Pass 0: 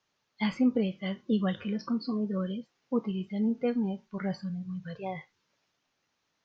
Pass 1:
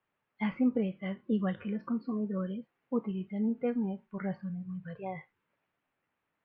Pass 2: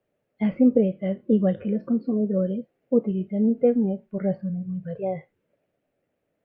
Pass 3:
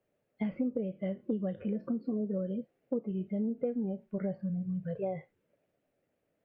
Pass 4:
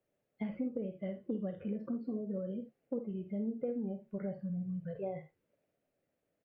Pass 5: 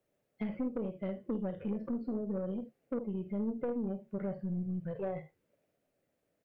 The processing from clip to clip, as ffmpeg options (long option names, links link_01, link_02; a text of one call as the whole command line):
ffmpeg -i in.wav -af "lowpass=frequency=2500:width=0.5412,lowpass=frequency=2500:width=1.3066,volume=-2.5dB" out.wav
ffmpeg -i in.wav -af "lowshelf=frequency=760:width_type=q:width=3:gain=8.5" out.wav
ffmpeg -i in.wav -af "acompressor=threshold=-27dB:ratio=6,volume=-3dB" out.wav
ffmpeg -i in.wav -af "aecho=1:1:50|63|77:0.266|0.178|0.158,volume=-4.5dB" out.wav
ffmpeg -i in.wav -af "aeval=exprs='(tanh(39.8*val(0)+0.35)-tanh(0.35))/39.8':channel_layout=same,volume=4dB" out.wav